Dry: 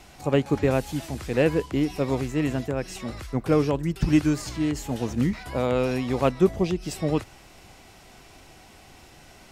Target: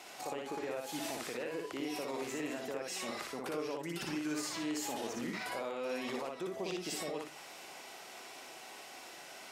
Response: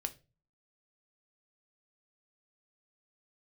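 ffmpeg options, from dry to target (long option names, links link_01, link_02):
-filter_complex "[0:a]highpass=440,acompressor=threshold=-33dB:ratio=3,alimiter=level_in=7.5dB:limit=-24dB:level=0:latency=1:release=90,volume=-7.5dB,asplit=2[link_01][link_02];[1:a]atrim=start_sample=2205,adelay=59[link_03];[link_02][link_03]afir=irnorm=-1:irlink=0,volume=-1.5dB[link_04];[link_01][link_04]amix=inputs=2:normalize=0"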